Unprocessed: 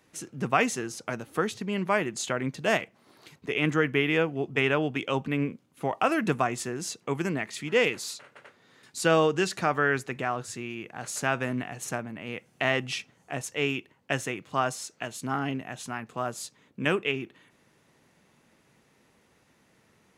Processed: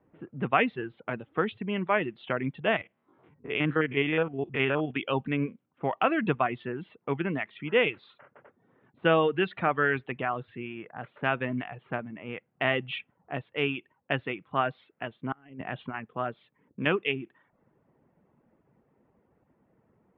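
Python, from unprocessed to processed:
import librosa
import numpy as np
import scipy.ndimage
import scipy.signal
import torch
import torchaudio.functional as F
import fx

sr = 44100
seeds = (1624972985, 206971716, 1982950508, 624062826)

y = fx.spec_steps(x, sr, hold_ms=50, at=(2.71, 4.9), fade=0.02)
y = fx.over_compress(y, sr, threshold_db=-37.0, ratio=-0.5, at=(15.32, 15.94))
y = scipy.signal.sosfilt(scipy.signal.butter(12, 3500.0, 'lowpass', fs=sr, output='sos'), y)
y = fx.dereverb_blind(y, sr, rt60_s=0.55)
y = fx.env_lowpass(y, sr, base_hz=850.0, full_db=-25.0)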